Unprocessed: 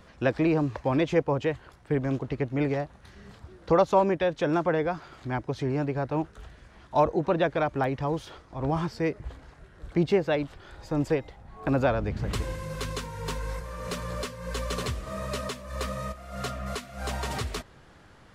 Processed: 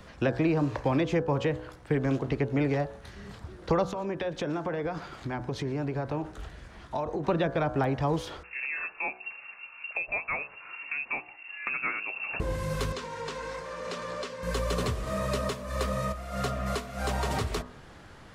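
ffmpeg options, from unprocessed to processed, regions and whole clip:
-filter_complex "[0:a]asettb=1/sr,asplit=3[s0][s1][s2];[s0]atrim=end=3.844[s3];[s1]atrim=start=3.84:end=7.24,asetpts=PTS-STARTPTS,afade=t=in:d=0.004:c=qsin,afade=t=out:st=3.396:d=0.004:c=qsin,acompressor=threshold=0.0282:ratio=10:attack=3.2:release=140:knee=1:detection=peak,aecho=1:1:117:0.0794,atrim=end_sample=149940[s4];[s2]atrim=start=7.236[s5];[s3][s4]acrossfade=d=0.004:c1=hsin:c2=qsin[s6];[s6][s5]acrossfade=d=0.004:c1=qsin:c2=hsin,asettb=1/sr,asplit=3[s7][s8][s9];[s7]atrim=end=8.434[s10];[s8]atrim=start=8.43:end=12.4,asetpts=PTS-STARTPTS,afade=t=in:d=0.004:c=qsin,afade=t=out:st=3.966:d=0.004:c=qsin,bandreject=f=830:w=12,lowpass=f=2400:t=q:w=0.5098,lowpass=f=2400:t=q:w=0.6013,lowpass=f=2400:t=q:w=0.9,lowpass=f=2400:t=q:w=2.563,afreqshift=-2800[s11];[s9]atrim=start=12.396[s12];[s10][s11]acrossfade=d=0.004:c1=hsin:c2=qsin[s13];[s13][s12]acrossfade=d=0.004:c1=qsin:c2=hsin,asettb=1/sr,asplit=3[s14][s15][s16];[s14]atrim=end=12.924[s17];[s15]atrim=start=12.92:end=14.43,asetpts=PTS-STARTPTS,afade=t=in:d=0.004:c=qsin,afade=t=out:st=1.506:d=0.004:c=qsin,acrossover=split=210 7700:gain=0.1 1 0.0708[s18][s19][s20];[s18][s19][s20]amix=inputs=3:normalize=0,acompressor=threshold=0.0141:ratio=2.5:attack=3.2:release=140:knee=1:detection=peak[s21];[s16]atrim=start=14.426[s22];[s17][s21]acrossfade=d=0.004:c1=hsin:c2=qsin[s23];[s23][s22]acrossfade=d=0.004:c1=qsin:c2=hsin,bandreject=f=61.84:t=h:w=4,bandreject=f=123.68:t=h:w=4,bandreject=f=185.52:t=h:w=4,bandreject=f=247.36:t=h:w=4,bandreject=f=309.2:t=h:w=4,bandreject=f=371.04:t=h:w=4,bandreject=f=432.88:t=h:w=4,bandreject=f=494.72:t=h:w=4,bandreject=f=556.56:t=h:w=4,bandreject=f=618.4:t=h:w=4,bandreject=f=680.24:t=h:w=4,bandreject=f=742.08:t=h:w=4,bandreject=f=803.92:t=h:w=4,bandreject=f=865.76:t=h:w=4,bandreject=f=927.6:t=h:w=4,bandreject=f=989.44:t=h:w=4,bandreject=f=1051.28:t=h:w=4,bandreject=f=1113.12:t=h:w=4,bandreject=f=1174.96:t=h:w=4,bandreject=f=1236.8:t=h:w=4,bandreject=f=1298.64:t=h:w=4,bandreject=f=1360.48:t=h:w=4,bandreject=f=1422.32:t=h:w=4,bandreject=f=1484.16:t=h:w=4,bandreject=f=1546:t=h:w=4,bandreject=f=1607.84:t=h:w=4,bandreject=f=1669.68:t=h:w=4,bandreject=f=1731.52:t=h:w=4,acrossover=split=260|1200[s24][s25][s26];[s24]acompressor=threshold=0.0224:ratio=4[s27];[s25]acompressor=threshold=0.0251:ratio=4[s28];[s26]acompressor=threshold=0.00891:ratio=4[s29];[s27][s28][s29]amix=inputs=3:normalize=0,volume=1.68"

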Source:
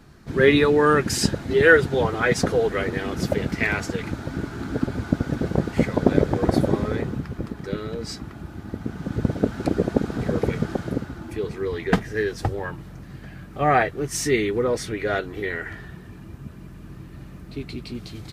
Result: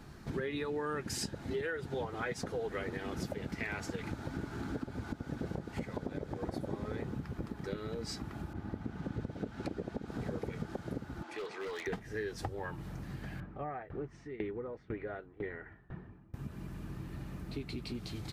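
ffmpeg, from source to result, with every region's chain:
-filter_complex "[0:a]asettb=1/sr,asplit=3[s0][s1][s2];[s0]atrim=end=8.534[s3];[s1]atrim=start=8.53:end=10.08,asetpts=PTS-STARTPTS,afade=t=in:d=0.004:c=qsin,afade=t=out:st=1.546:d=0.004:c=qsin,lowpass=f=3100:p=1,adynamicequalizer=threshold=0.00891:dfrequency=1900:dqfactor=0.7:tfrequency=1900:tqfactor=0.7:attack=5:release=100:ratio=0.375:range=2.5:mode=boostabove:tftype=highshelf[s4];[s2]atrim=start=10.076[s5];[s3][s4]acrossfade=d=0.004:c1=hsin:c2=qsin[s6];[s6][s5]acrossfade=d=0.004:c1=qsin:c2=hsin,asettb=1/sr,asplit=3[s7][s8][s9];[s7]atrim=end=11.234[s10];[s8]atrim=start=11.23:end=11.87,asetpts=PTS-STARTPTS,afade=t=in:d=0.004:c=qsin,afade=t=out:st=0.636:d=0.004:c=qsin,highpass=600,lowpass=5900,aeval=exprs='0.0316*(abs(mod(val(0)/0.0316+3,4)-2)-1)':c=same[s11];[s9]atrim=start=11.866[s12];[s10][s11]acrossfade=d=0.004:c1=hsin:c2=qsin[s13];[s13][s12]acrossfade=d=0.004:c1=qsin:c2=hsin,asettb=1/sr,asplit=3[s14][s15][s16];[s14]atrim=end=13.404[s17];[s15]atrim=start=13.4:end=16.34,asetpts=PTS-STARTPTS,afade=t=in:d=0.004:c=qsin,afade=t=out:st=2.936:d=0.004:c=qsin,lowpass=1700,aeval=exprs='val(0)*pow(10,-25*if(lt(mod(2*n/s,1),2*abs(2)/1000),1-mod(2*n/s,1)/(2*abs(2)/1000),(mod(2*n/s,1)-2*abs(2)/1000)/(1-2*abs(2)/1000))/20)':c=same[s18];[s16]atrim=start=16.336[s19];[s17][s18]acrossfade=d=0.004:c1=hsin:c2=qsin[s20];[s20][s19]acrossfade=d=0.004:c1=qsin:c2=hsin,equalizer=f=850:t=o:w=0.24:g=4,alimiter=limit=0.224:level=0:latency=1:release=389,acompressor=threshold=0.0158:ratio=3,volume=0.794"

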